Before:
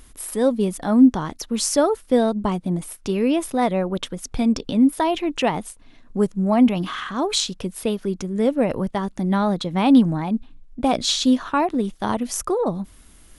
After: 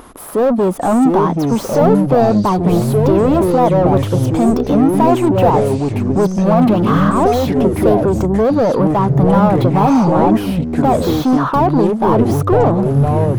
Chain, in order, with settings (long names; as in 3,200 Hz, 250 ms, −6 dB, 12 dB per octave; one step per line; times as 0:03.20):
mid-hump overdrive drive 33 dB, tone 2,400 Hz, clips at −4 dBFS
flat-topped bell 4,000 Hz −14 dB 2.9 octaves
delay with pitch and tempo change per echo 583 ms, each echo −5 semitones, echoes 3
level −1.5 dB